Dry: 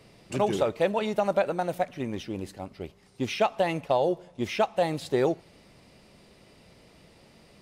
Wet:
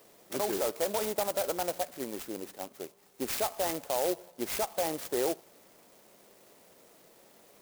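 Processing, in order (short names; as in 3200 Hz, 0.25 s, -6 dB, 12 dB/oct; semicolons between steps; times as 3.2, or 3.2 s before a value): HPF 370 Hz 12 dB/oct; limiter -21 dBFS, peak gain reduction 8.5 dB; clock jitter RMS 0.11 ms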